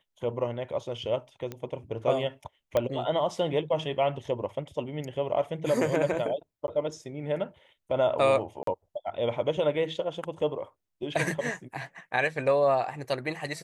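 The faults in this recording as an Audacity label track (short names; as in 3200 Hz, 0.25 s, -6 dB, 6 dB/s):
1.520000	1.520000	pop -22 dBFS
2.770000	2.770000	pop -13 dBFS
6.670000	6.680000	gap 10 ms
8.630000	8.670000	gap 43 ms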